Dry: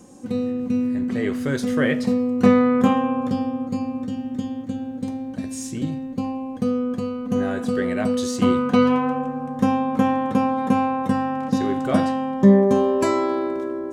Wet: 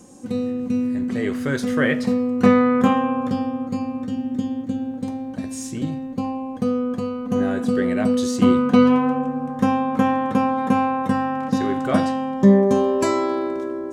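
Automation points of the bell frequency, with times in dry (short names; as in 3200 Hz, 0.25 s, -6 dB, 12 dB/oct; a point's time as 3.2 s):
bell +3.5 dB 1.4 oct
8300 Hz
from 1.34 s 1500 Hz
from 4.12 s 300 Hz
from 4.94 s 920 Hz
from 7.4 s 250 Hz
from 9.5 s 1500 Hz
from 11.98 s 6200 Hz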